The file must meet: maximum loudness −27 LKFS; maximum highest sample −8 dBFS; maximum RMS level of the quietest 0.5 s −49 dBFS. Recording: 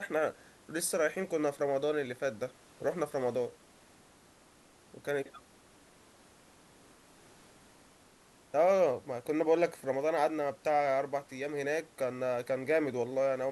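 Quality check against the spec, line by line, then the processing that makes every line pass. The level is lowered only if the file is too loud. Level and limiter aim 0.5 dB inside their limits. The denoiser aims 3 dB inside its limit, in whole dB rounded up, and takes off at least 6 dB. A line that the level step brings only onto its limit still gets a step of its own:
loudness −32.5 LKFS: in spec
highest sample −16.5 dBFS: in spec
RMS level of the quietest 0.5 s −61 dBFS: in spec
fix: no processing needed

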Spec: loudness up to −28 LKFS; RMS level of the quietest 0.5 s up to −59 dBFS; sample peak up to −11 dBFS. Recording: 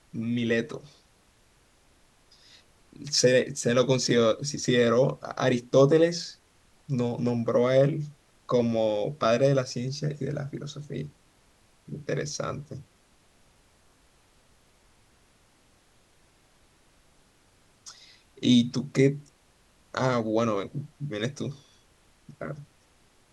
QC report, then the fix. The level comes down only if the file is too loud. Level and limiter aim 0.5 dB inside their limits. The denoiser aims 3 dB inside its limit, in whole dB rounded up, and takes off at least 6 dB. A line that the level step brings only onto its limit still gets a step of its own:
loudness −26.0 LKFS: out of spec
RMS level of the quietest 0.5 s −62 dBFS: in spec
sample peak −8.0 dBFS: out of spec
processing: level −2.5 dB
brickwall limiter −11.5 dBFS

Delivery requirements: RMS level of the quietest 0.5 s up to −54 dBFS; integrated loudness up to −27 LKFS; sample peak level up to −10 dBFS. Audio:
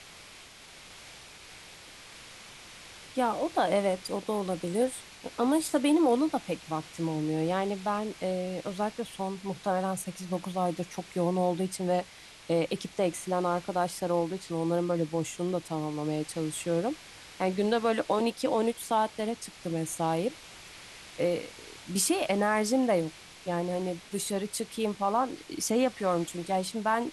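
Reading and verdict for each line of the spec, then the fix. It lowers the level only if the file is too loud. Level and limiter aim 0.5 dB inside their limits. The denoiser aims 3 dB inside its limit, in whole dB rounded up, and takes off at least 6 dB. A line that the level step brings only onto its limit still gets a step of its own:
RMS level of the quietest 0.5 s −50 dBFS: out of spec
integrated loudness −30.0 LKFS: in spec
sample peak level −13.5 dBFS: in spec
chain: broadband denoise 7 dB, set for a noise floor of −50 dBFS

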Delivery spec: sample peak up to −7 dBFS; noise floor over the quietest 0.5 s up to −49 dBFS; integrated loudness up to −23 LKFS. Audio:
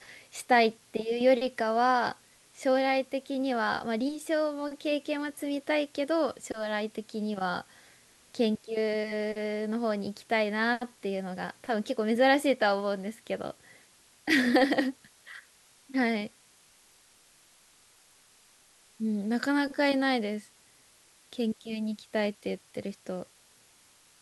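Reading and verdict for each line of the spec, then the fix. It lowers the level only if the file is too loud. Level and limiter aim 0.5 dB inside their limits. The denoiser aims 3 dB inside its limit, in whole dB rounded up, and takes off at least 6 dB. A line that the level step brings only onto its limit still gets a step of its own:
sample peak −10.5 dBFS: in spec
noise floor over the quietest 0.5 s −61 dBFS: in spec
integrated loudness −29.5 LKFS: in spec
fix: no processing needed

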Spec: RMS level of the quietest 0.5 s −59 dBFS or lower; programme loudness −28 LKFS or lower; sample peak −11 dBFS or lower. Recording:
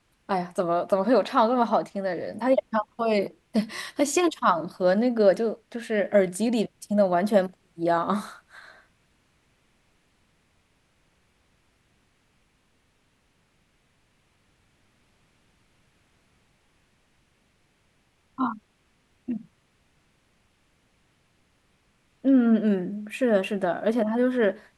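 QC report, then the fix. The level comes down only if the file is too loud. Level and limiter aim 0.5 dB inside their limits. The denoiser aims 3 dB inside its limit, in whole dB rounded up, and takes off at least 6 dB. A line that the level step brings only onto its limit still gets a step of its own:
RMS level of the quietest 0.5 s −67 dBFS: in spec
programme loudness −24.5 LKFS: out of spec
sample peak −7.5 dBFS: out of spec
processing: level −4 dB

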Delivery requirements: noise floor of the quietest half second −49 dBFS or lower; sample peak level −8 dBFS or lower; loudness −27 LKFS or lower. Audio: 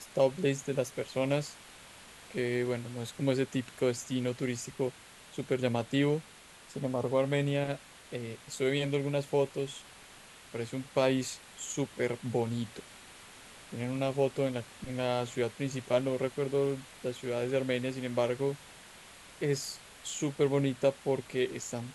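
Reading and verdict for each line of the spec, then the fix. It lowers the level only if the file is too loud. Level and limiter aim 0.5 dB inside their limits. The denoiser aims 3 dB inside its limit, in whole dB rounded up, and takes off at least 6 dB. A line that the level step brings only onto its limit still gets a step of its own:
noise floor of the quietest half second −54 dBFS: in spec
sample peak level −13.5 dBFS: in spec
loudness −32.5 LKFS: in spec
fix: no processing needed

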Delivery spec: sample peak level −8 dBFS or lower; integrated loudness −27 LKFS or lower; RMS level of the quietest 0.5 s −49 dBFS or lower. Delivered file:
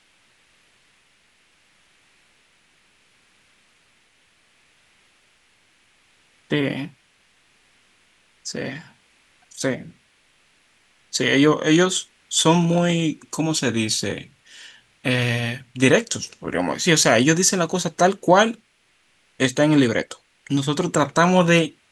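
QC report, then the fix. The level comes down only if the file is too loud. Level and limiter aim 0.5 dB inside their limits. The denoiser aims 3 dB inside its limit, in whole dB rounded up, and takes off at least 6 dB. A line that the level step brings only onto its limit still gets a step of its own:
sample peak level −2.0 dBFS: out of spec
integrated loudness −20.0 LKFS: out of spec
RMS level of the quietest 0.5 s −62 dBFS: in spec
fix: level −7.5 dB

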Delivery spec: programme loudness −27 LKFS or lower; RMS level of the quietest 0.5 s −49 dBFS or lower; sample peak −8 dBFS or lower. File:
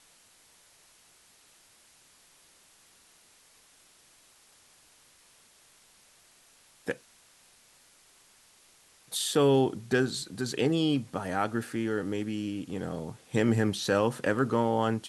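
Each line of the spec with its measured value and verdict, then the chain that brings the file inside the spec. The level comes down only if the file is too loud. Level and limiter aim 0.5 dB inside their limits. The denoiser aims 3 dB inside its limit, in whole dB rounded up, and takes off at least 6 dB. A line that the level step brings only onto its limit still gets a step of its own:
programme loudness −29.0 LKFS: in spec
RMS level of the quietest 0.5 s −61 dBFS: in spec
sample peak −12.5 dBFS: in spec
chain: no processing needed

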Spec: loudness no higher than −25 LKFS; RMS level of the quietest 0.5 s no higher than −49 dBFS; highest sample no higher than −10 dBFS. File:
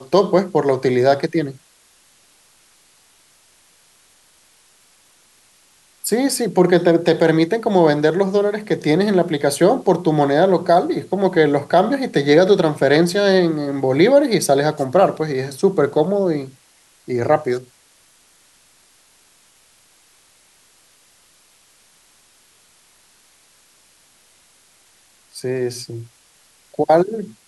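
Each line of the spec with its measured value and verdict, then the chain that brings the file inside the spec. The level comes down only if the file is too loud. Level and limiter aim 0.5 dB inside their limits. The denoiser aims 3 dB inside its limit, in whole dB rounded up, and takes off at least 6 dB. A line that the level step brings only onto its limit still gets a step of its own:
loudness −17.0 LKFS: out of spec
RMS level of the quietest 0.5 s −55 dBFS: in spec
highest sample −2.0 dBFS: out of spec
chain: level −8.5 dB

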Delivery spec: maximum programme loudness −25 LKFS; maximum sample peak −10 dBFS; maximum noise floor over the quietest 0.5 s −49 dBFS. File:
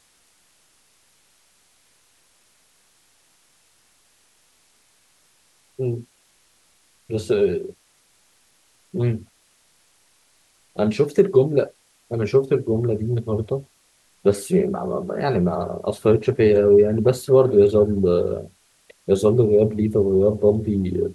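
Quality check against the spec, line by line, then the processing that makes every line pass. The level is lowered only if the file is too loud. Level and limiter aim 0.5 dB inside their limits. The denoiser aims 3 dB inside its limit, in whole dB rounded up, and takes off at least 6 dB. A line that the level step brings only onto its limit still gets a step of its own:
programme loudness −20.0 LKFS: out of spec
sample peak −4.5 dBFS: out of spec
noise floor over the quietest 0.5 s −60 dBFS: in spec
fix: level −5.5 dB
brickwall limiter −10.5 dBFS

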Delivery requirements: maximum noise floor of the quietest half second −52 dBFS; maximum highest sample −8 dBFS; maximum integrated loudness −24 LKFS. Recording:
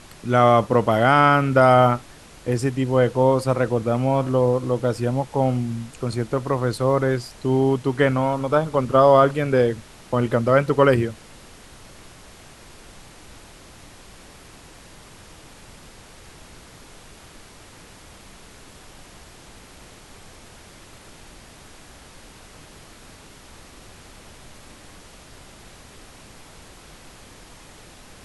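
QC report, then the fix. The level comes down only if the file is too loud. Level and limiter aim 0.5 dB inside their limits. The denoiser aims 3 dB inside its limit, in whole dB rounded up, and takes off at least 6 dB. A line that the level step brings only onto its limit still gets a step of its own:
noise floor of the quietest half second −45 dBFS: out of spec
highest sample −3.0 dBFS: out of spec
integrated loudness −19.5 LKFS: out of spec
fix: broadband denoise 6 dB, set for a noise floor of −45 dBFS
level −5 dB
brickwall limiter −8.5 dBFS

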